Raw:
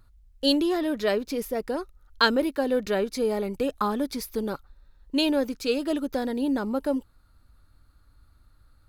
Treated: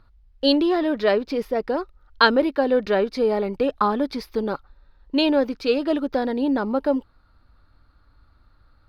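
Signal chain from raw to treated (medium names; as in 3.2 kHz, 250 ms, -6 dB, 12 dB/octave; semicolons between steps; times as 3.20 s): FFT filter 110 Hz 0 dB, 880 Hz +6 dB, 4.9 kHz 0 dB, 7.1 kHz -15 dB; trim +1 dB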